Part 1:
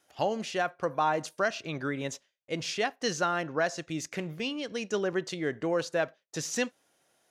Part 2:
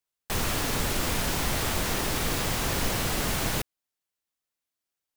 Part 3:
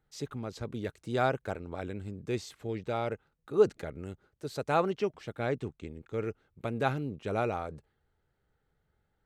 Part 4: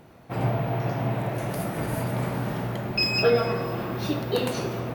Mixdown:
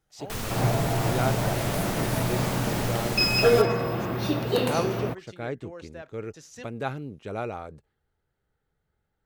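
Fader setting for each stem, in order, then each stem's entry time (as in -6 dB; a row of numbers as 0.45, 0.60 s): -14.0, -5.5, -1.5, +1.0 dB; 0.00, 0.00, 0.00, 0.20 s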